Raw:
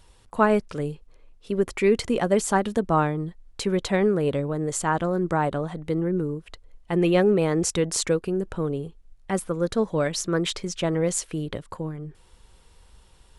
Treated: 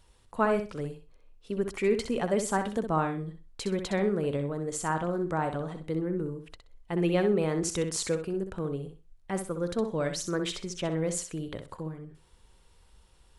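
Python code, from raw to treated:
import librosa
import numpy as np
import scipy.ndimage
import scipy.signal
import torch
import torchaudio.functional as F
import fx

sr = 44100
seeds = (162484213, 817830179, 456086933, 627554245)

y = fx.echo_feedback(x, sr, ms=63, feedback_pct=22, wet_db=-8)
y = F.gain(torch.from_numpy(y), -6.5).numpy()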